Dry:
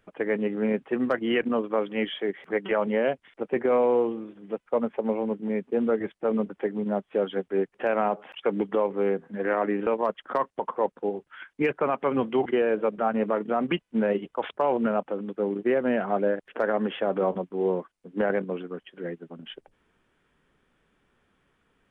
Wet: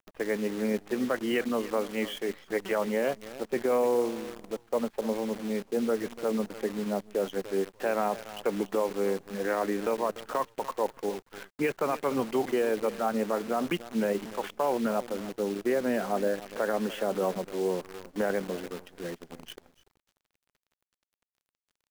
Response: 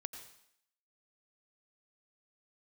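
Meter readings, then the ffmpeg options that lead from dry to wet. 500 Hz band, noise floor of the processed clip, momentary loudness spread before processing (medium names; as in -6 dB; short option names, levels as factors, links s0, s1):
-3.5 dB, under -85 dBFS, 9 LU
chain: -af "aecho=1:1:294|588:0.158|0.0333,acrusher=bits=7:dc=4:mix=0:aa=0.000001,volume=0.668"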